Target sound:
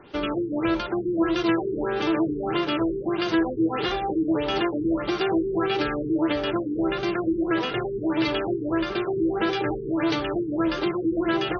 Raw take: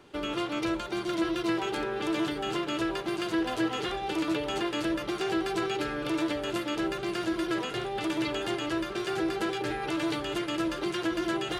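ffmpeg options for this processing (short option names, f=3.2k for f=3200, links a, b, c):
-af "afftfilt=real='re*lt(b*sr/1024,440*pow(6600/440,0.5+0.5*sin(2*PI*1.6*pts/sr)))':imag='im*lt(b*sr/1024,440*pow(6600/440,0.5+0.5*sin(2*PI*1.6*pts/sr)))':win_size=1024:overlap=0.75,volume=6.5dB"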